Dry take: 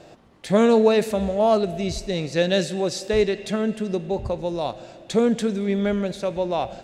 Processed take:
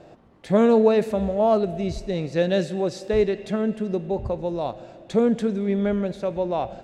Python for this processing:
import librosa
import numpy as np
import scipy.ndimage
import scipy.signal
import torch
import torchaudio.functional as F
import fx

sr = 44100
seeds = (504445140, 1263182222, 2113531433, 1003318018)

y = fx.high_shelf(x, sr, hz=2400.0, db=-11.0)